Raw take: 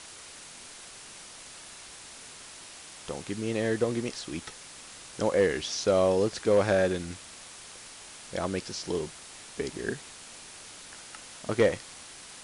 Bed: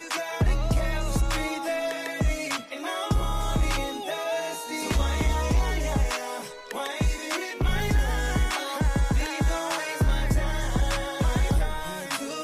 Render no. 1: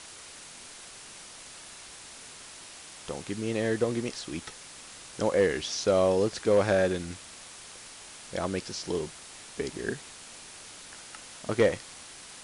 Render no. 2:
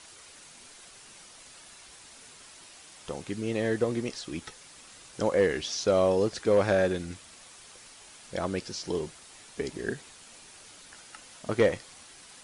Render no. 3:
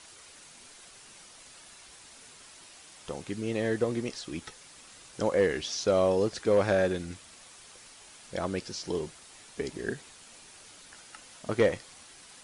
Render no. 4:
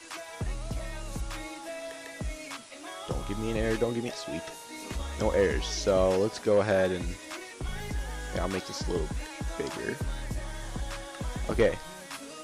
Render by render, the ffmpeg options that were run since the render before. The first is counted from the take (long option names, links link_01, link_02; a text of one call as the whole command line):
ffmpeg -i in.wav -af anull out.wav
ffmpeg -i in.wav -af "afftdn=noise_reduction=6:noise_floor=-47" out.wav
ffmpeg -i in.wav -af "volume=-1dB" out.wav
ffmpeg -i in.wav -i bed.wav -filter_complex "[1:a]volume=-11dB[link_01];[0:a][link_01]amix=inputs=2:normalize=0" out.wav